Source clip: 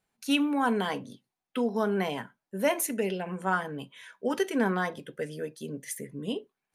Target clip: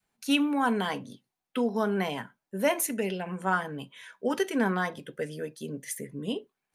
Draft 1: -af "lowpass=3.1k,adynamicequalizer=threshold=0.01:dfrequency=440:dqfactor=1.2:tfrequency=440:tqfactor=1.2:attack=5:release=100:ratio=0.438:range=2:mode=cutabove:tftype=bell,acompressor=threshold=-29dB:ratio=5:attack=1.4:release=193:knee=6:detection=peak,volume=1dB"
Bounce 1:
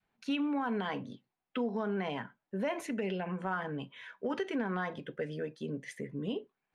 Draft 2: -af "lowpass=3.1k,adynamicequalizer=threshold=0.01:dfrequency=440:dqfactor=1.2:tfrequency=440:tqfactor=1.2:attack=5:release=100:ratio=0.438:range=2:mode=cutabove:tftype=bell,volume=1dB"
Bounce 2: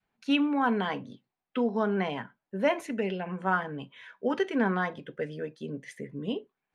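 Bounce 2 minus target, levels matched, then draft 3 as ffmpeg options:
4000 Hz band -2.5 dB
-af "adynamicequalizer=threshold=0.01:dfrequency=440:dqfactor=1.2:tfrequency=440:tqfactor=1.2:attack=5:release=100:ratio=0.438:range=2:mode=cutabove:tftype=bell,volume=1dB"

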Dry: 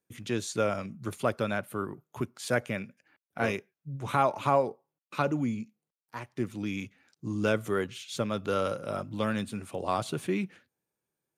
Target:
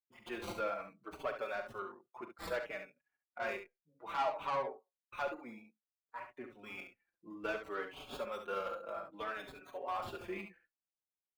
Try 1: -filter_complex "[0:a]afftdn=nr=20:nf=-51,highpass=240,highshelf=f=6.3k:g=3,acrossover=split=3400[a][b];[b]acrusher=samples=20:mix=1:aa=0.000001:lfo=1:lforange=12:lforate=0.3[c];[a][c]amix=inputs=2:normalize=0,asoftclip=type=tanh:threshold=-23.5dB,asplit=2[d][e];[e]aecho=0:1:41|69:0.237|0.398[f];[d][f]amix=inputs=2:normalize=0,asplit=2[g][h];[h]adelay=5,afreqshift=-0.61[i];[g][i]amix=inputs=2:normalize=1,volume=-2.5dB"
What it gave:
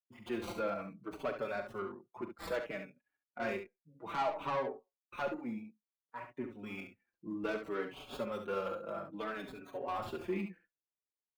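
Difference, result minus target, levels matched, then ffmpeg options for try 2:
250 Hz band +6.5 dB
-filter_complex "[0:a]afftdn=nr=20:nf=-51,highpass=550,highshelf=f=6.3k:g=3,acrossover=split=3400[a][b];[b]acrusher=samples=20:mix=1:aa=0.000001:lfo=1:lforange=12:lforate=0.3[c];[a][c]amix=inputs=2:normalize=0,asoftclip=type=tanh:threshold=-23.5dB,asplit=2[d][e];[e]aecho=0:1:41|69:0.237|0.398[f];[d][f]amix=inputs=2:normalize=0,asplit=2[g][h];[h]adelay=5,afreqshift=-0.61[i];[g][i]amix=inputs=2:normalize=1,volume=-2.5dB"

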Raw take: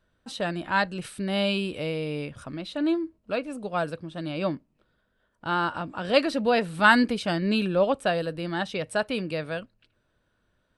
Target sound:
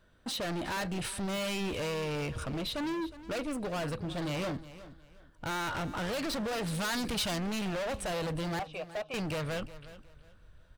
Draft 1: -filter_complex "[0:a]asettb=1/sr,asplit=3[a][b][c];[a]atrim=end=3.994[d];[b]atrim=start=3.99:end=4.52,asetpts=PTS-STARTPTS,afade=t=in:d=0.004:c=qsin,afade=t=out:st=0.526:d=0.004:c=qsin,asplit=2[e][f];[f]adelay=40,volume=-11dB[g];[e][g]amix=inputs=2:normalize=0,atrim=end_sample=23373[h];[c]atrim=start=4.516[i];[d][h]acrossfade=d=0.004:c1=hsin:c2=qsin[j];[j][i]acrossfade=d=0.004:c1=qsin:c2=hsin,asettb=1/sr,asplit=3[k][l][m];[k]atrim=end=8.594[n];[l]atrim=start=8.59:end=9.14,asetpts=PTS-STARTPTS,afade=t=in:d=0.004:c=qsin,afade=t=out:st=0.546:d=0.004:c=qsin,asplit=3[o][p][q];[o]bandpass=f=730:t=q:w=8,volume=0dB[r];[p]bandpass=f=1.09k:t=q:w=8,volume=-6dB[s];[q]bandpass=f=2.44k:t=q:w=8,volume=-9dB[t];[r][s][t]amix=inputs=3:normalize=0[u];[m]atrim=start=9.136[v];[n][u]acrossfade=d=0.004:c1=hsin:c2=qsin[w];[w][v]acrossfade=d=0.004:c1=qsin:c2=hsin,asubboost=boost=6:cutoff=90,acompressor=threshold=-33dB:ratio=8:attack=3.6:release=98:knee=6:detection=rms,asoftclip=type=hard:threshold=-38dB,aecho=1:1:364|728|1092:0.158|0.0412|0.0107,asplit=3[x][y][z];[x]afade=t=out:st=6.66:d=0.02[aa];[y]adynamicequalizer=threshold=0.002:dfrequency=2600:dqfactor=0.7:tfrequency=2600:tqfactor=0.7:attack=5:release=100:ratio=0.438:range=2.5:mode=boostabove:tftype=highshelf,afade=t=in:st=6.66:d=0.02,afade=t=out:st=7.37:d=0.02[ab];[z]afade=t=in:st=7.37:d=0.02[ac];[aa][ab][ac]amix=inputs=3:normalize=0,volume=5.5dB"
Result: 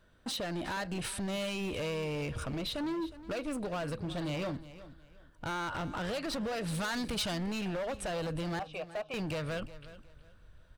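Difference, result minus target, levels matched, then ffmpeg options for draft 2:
compressor: peak gain reduction +9.5 dB
-filter_complex "[0:a]asettb=1/sr,asplit=3[a][b][c];[a]atrim=end=3.994[d];[b]atrim=start=3.99:end=4.52,asetpts=PTS-STARTPTS,afade=t=in:d=0.004:c=qsin,afade=t=out:st=0.526:d=0.004:c=qsin,asplit=2[e][f];[f]adelay=40,volume=-11dB[g];[e][g]amix=inputs=2:normalize=0,atrim=end_sample=23373[h];[c]atrim=start=4.516[i];[d][h]acrossfade=d=0.004:c1=hsin:c2=qsin[j];[j][i]acrossfade=d=0.004:c1=qsin:c2=hsin,asettb=1/sr,asplit=3[k][l][m];[k]atrim=end=8.594[n];[l]atrim=start=8.59:end=9.14,asetpts=PTS-STARTPTS,afade=t=in:d=0.004:c=qsin,afade=t=out:st=0.546:d=0.004:c=qsin,asplit=3[o][p][q];[o]bandpass=f=730:t=q:w=8,volume=0dB[r];[p]bandpass=f=1.09k:t=q:w=8,volume=-6dB[s];[q]bandpass=f=2.44k:t=q:w=8,volume=-9dB[t];[r][s][t]amix=inputs=3:normalize=0[u];[m]atrim=start=9.136[v];[n][u]acrossfade=d=0.004:c1=hsin:c2=qsin[w];[w][v]acrossfade=d=0.004:c1=qsin:c2=hsin,asubboost=boost=6:cutoff=90,acompressor=threshold=-22dB:ratio=8:attack=3.6:release=98:knee=6:detection=rms,asoftclip=type=hard:threshold=-38dB,aecho=1:1:364|728|1092:0.158|0.0412|0.0107,asplit=3[x][y][z];[x]afade=t=out:st=6.66:d=0.02[aa];[y]adynamicequalizer=threshold=0.002:dfrequency=2600:dqfactor=0.7:tfrequency=2600:tqfactor=0.7:attack=5:release=100:ratio=0.438:range=2.5:mode=boostabove:tftype=highshelf,afade=t=in:st=6.66:d=0.02,afade=t=out:st=7.37:d=0.02[ab];[z]afade=t=in:st=7.37:d=0.02[ac];[aa][ab][ac]amix=inputs=3:normalize=0,volume=5.5dB"

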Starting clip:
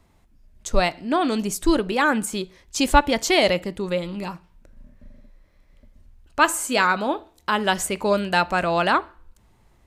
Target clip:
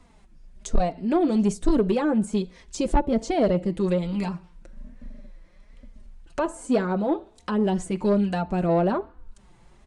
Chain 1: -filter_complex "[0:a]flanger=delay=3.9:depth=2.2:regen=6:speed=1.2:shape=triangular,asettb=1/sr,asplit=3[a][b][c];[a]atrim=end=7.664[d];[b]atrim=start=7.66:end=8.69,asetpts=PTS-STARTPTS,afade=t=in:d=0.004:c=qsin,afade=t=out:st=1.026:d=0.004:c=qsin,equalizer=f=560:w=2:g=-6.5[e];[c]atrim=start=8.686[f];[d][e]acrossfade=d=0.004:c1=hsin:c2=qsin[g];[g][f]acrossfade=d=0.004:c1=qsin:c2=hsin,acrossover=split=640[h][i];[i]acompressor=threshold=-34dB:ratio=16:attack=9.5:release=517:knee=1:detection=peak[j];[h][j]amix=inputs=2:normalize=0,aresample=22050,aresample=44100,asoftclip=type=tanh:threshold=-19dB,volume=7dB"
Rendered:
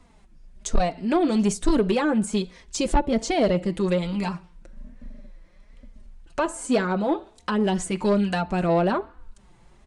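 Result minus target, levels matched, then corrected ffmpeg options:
compressor: peak gain reduction -7 dB
-filter_complex "[0:a]flanger=delay=3.9:depth=2.2:regen=6:speed=1.2:shape=triangular,asettb=1/sr,asplit=3[a][b][c];[a]atrim=end=7.664[d];[b]atrim=start=7.66:end=8.69,asetpts=PTS-STARTPTS,afade=t=in:d=0.004:c=qsin,afade=t=out:st=1.026:d=0.004:c=qsin,equalizer=f=560:w=2:g=-6.5[e];[c]atrim=start=8.686[f];[d][e]acrossfade=d=0.004:c1=hsin:c2=qsin[g];[g][f]acrossfade=d=0.004:c1=qsin:c2=hsin,acrossover=split=640[h][i];[i]acompressor=threshold=-41.5dB:ratio=16:attack=9.5:release=517:knee=1:detection=peak[j];[h][j]amix=inputs=2:normalize=0,aresample=22050,aresample=44100,asoftclip=type=tanh:threshold=-19dB,volume=7dB"

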